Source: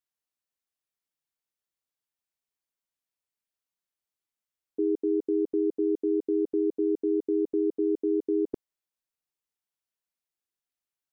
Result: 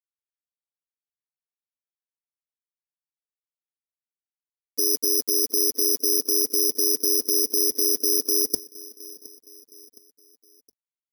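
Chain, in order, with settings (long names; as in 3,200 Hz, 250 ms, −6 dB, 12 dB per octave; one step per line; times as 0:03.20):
mains-hum notches 50/100/150/200 Hz
comb filter 4.4 ms, depth 52%
harmonic and percussive parts rebalanced percussive +8 dB
in parallel at 0 dB: brickwall limiter −20 dBFS, peak gain reduction 8.5 dB
on the sum: bit reduction 7 bits
on a send: repeating echo 716 ms, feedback 47%, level −21.5 dB
on the sum: bad sample-rate conversion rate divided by 8×, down filtered, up zero stuff
level −11 dB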